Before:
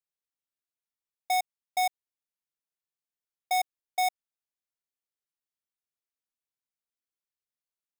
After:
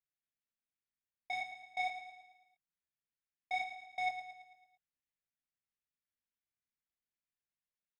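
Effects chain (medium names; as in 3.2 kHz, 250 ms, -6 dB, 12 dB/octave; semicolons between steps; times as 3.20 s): low-pass 2.1 kHz 12 dB/octave; high-order bell 640 Hz -11 dB 2.3 oct; compression, threshold -35 dBFS, peak gain reduction 3 dB; chorus voices 2, 0.49 Hz, delay 26 ms, depth 4.5 ms; feedback delay 111 ms, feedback 51%, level -10 dB; trim +4.5 dB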